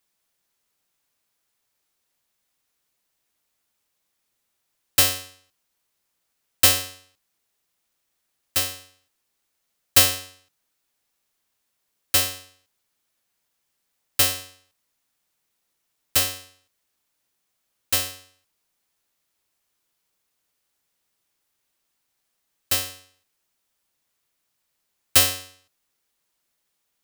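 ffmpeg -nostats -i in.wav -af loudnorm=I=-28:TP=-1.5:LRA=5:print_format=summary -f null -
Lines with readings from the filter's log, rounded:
Input Integrated:    -20.2 LUFS
Input True Peak:      +0.0 dBTP
Input LRA:             8.9 LU
Input Threshold:     -32.7 LUFS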